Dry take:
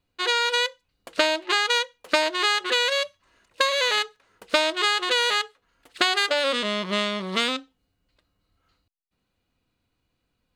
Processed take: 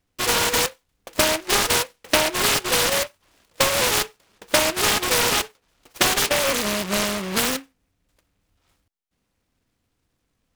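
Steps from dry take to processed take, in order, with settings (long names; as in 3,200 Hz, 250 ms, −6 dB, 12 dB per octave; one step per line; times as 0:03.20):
short delay modulated by noise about 1,700 Hz, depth 0.17 ms
level +2.5 dB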